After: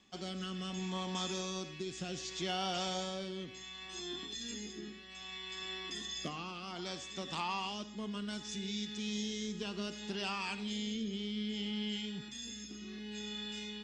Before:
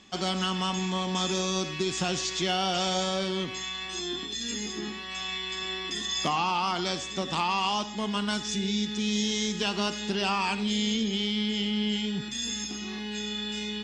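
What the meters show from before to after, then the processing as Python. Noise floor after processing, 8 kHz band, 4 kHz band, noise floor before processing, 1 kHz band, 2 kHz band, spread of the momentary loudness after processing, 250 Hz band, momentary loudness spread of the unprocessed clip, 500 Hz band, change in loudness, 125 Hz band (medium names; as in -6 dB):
-49 dBFS, -11.5 dB, -11.0 dB, -37 dBFS, -12.5 dB, -11.0 dB, 7 LU, -10.0 dB, 6 LU, -10.5 dB, -11.0 dB, -10.0 dB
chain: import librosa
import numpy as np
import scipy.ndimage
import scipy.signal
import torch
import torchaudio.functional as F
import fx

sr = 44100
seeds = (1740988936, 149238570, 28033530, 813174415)

y = fx.rotary(x, sr, hz=0.65)
y = F.gain(torch.from_numpy(y), -8.5).numpy()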